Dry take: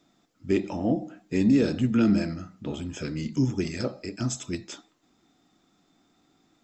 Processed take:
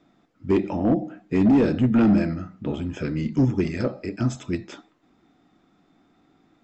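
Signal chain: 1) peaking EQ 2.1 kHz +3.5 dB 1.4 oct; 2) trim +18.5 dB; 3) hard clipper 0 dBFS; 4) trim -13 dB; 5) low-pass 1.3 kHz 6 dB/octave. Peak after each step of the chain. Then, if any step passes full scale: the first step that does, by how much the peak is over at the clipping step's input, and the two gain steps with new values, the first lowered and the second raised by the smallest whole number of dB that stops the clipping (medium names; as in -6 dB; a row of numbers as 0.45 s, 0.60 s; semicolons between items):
-11.5 dBFS, +7.0 dBFS, 0.0 dBFS, -13.0 dBFS, -13.0 dBFS; step 2, 7.0 dB; step 2 +11.5 dB, step 4 -6 dB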